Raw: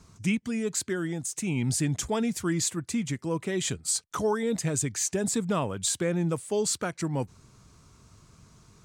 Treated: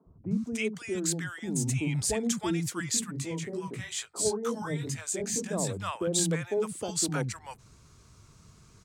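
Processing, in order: 2.89–5.53 chorus 2.3 Hz, delay 17 ms, depth 5.6 ms; three bands offset in time mids, lows, highs 60/310 ms, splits 220/820 Hz

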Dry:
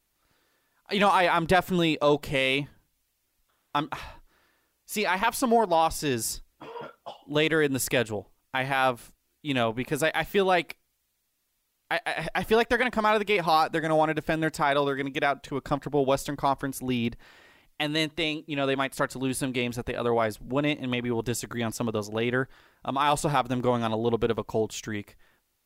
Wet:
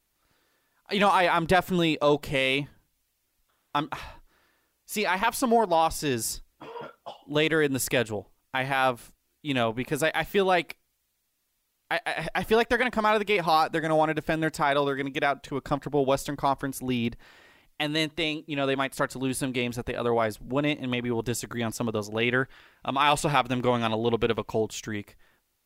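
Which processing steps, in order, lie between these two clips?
22.19–24.55 bell 2500 Hz +7.5 dB 1.2 oct

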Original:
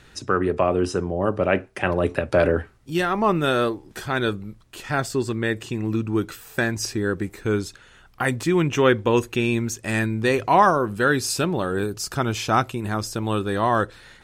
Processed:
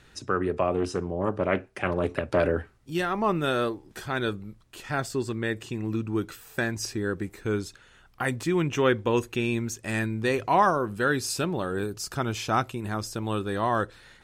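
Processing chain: 0.74–2.4 Doppler distortion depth 0.31 ms; gain -5 dB

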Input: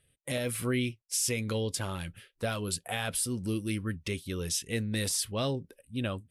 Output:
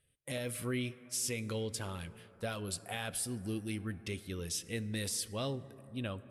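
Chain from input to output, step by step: plate-style reverb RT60 4.2 s, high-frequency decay 0.25×, DRR 15 dB; gain -6 dB

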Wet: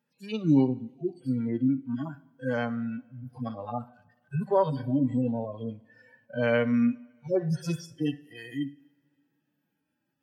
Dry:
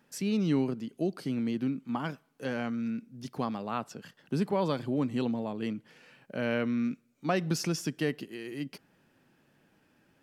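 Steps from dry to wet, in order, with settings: median-filter separation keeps harmonic; spectral noise reduction 19 dB; two-slope reverb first 0.72 s, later 2.5 s, from -18 dB, DRR 16.5 dB; gain +7 dB

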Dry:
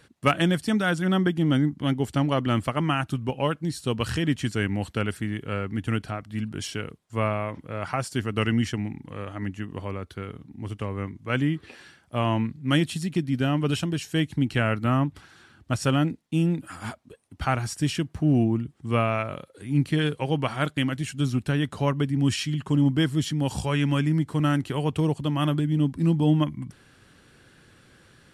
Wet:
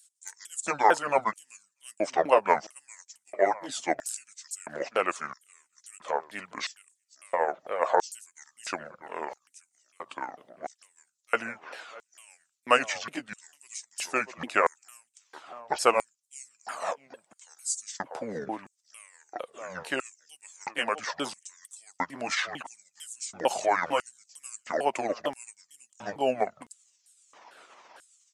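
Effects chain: repeated pitch sweeps -10 st, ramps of 0.451 s; dynamic EQ 3800 Hz, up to -5 dB, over -50 dBFS, Q 1.4; harmonic-percussive split percussive +6 dB; low shelf 110 Hz -7.5 dB; outdoor echo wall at 110 m, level -22 dB; LFO high-pass square 0.75 Hz 610–7800 Hz

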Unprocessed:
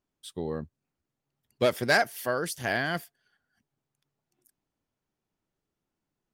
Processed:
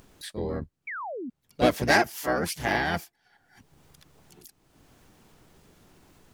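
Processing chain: harmoniser -12 st -3 dB, +3 st -5 dB; painted sound fall, 0.87–1.3, 220–2400 Hz -35 dBFS; upward compressor, threshold -36 dBFS

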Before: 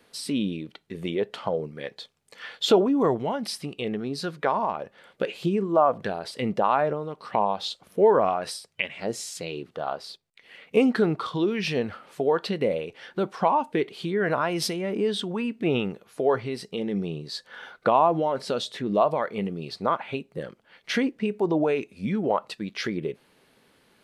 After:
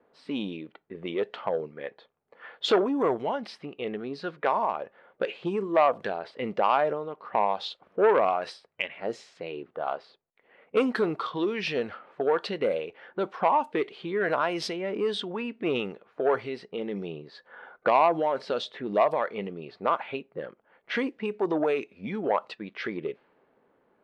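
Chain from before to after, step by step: low-pass opened by the level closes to 950 Hz, open at -19.5 dBFS; tone controls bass -11 dB, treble -4 dB; core saturation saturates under 860 Hz

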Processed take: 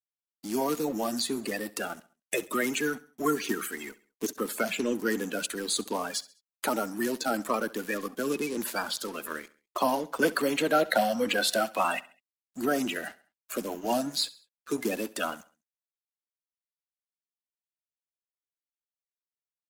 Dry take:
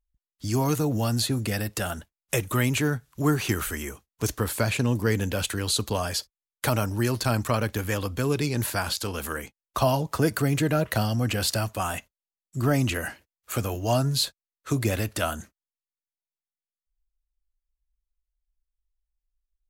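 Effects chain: bin magnitudes rounded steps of 30 dB; steep high-pass 200 Hz 36 dB/oct; spectral gain 10.22–12.34, 490–4400 Hz +6 dB; crossover distortion -44.5 dBFS; on a send: feedback echo 67 ms, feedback 42%, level -20 dB; on the sum: gain -2 dB

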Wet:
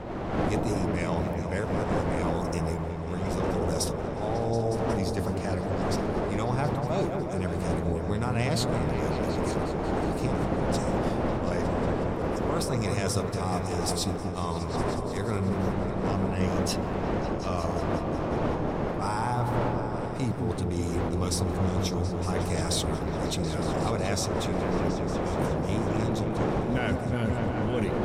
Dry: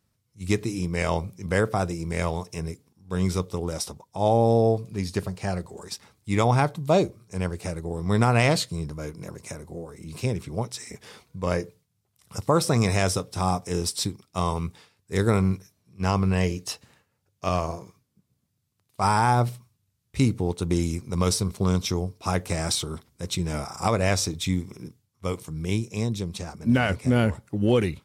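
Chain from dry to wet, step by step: wind noise 580 Hz -24 dBFS; reverse; compressor 10:1, threshold -28 dBFS, peak gain reduction 26.5 dB; reverse; repeats that get brighter 0.182 s, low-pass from 750 Hz, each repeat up 1 oct, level -3 dB; gain +2 dB

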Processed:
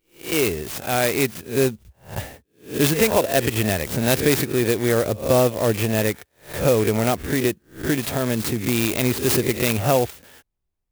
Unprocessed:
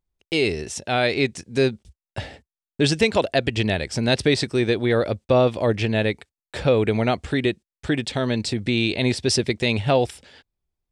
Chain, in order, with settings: spectral swells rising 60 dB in 0.35 s; clock jitter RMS 0.059 ms

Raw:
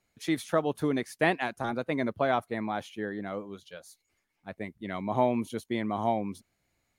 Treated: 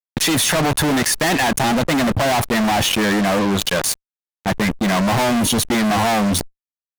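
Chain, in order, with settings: comb 1.1 ms, depth 42%; fuzz box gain 50 dB, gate -52 dBFS; fast leveller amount 70%; gain -3 dB

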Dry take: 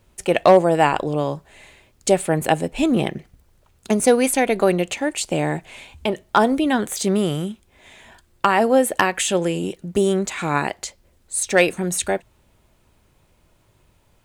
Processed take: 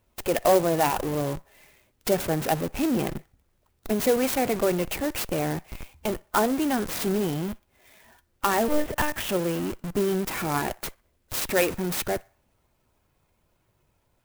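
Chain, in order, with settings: bin magnitudes rounded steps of 15 dB; low shelf 110 Hz -4.5 dB; in parallel at -5 dB: Schmitt trigger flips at -32 dBFS; on the sum: band-limited delay 61 ms, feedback 38%, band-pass 1400 Hz, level -22 dB; 8.68–9.29 monotone LPC vocoder at 8 kHz 300 Hz; clock jitter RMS 0.051 ms; gain -7.5 dB

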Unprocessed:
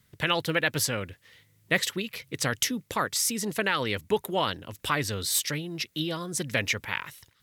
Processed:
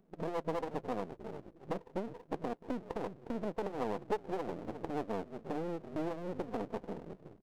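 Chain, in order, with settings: FFT band-pass 160–520 Hz; frequency-shifting echo 0.357 s, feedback 33%, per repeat -52 Hz, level -17 dB; compressor 3:1, threshold -44 dBFS, peak gain reduction 17.5 dB; half-wave rectifier; tilt +2 dB/oct; Doppler distortion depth 0.39 ms; gain +15 dB

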